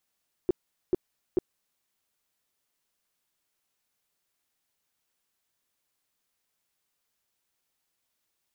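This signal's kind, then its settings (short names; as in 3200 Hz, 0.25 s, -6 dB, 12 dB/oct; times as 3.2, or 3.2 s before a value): tone bursts 362 Hz, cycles 6, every 0.44 s, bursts 3, -18.5 dBFS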